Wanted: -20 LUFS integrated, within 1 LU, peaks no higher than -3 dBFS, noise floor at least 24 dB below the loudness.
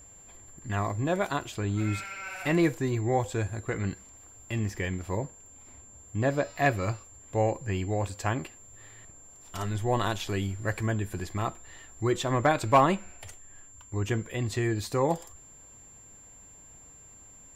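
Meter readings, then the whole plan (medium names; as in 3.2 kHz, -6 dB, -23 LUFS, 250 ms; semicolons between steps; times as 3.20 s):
steady tone 7.3 kHz; tone level -50 dBFS; loudness -29.5 LUFS; peak level -11.5 dBFS; loudness target -20.0 LUFS
-> band-stop 7.3 kHz, Q 30; trim +9.5 dB; peak limiter -3 dBFS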